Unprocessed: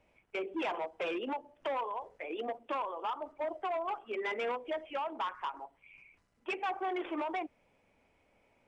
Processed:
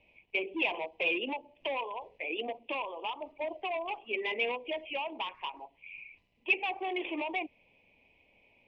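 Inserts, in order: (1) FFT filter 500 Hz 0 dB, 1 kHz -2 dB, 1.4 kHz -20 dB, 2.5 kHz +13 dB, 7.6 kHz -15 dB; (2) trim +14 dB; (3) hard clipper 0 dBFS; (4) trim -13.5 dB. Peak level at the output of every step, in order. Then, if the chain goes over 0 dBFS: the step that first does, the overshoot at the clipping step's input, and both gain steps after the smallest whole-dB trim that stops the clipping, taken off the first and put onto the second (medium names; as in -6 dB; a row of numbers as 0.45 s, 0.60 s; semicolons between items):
-17.5 dBFS, -3.5 dBFS, -3.5 dBFS, -17.0 dBFS; nothing clips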